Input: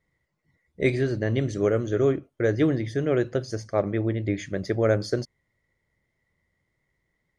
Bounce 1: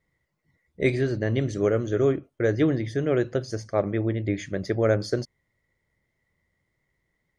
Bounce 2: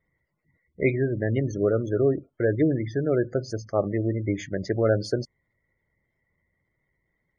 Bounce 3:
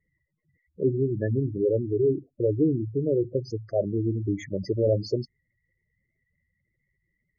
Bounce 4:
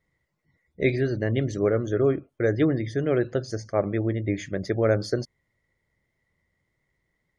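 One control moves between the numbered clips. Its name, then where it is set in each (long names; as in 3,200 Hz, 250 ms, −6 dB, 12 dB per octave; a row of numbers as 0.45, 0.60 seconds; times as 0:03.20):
gate on every frequency bin, under each frame's peak: −60, −25, −10, −40 decibels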